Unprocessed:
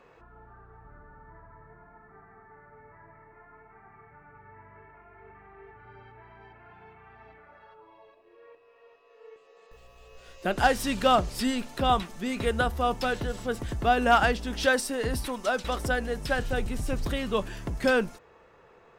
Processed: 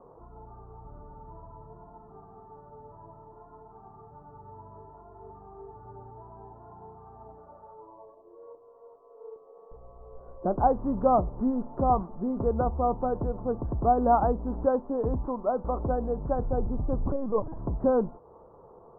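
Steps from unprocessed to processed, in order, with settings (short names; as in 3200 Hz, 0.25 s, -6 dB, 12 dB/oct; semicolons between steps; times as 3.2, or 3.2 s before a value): steep low-pass 1100 Hz 48 dB/oct; in parallel at -1.5 dB: compressor, threshold -40 dBFS, peak gain reduction 21 dB; 17.06–17.59 on the sum: LPC vocoder at 8 kHz pitch kept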